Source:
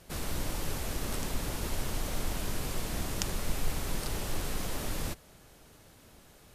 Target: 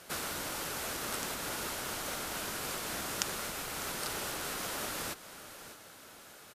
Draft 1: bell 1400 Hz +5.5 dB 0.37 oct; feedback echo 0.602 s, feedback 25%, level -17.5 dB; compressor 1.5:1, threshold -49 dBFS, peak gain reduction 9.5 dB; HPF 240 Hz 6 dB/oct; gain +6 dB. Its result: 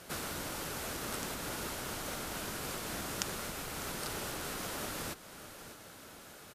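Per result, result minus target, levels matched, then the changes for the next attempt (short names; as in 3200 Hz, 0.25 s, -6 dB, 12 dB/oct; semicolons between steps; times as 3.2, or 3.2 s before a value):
250 Hz band +4.0 dB; compressor: peak gain reduction +3 dB
change: HPF 530 Hz 6 dB/oct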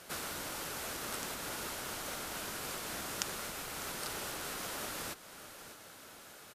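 compressor: peak gain reduction +3 dB
change: compressor 1.5:1, threshold -40 dBFS, peak gain reduction 6.5 dB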